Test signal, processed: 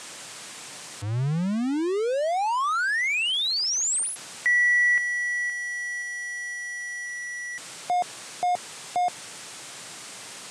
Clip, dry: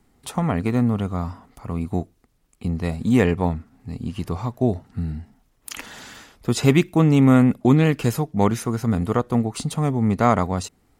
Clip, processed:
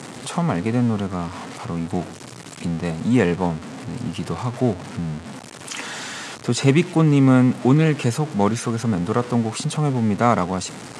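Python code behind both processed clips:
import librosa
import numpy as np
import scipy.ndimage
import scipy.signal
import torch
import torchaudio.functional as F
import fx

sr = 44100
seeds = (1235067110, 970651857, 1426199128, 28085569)

y = x + 0.5 * 10.0 ** (-27.5 / 20.0) * np.sign(x)
y = scipy.signal.sosfilt(scipy.signal.ellip(3, 1.0, 50, [120.0, 8800.0], 'bandpass', fs=sr, output='sos'), y)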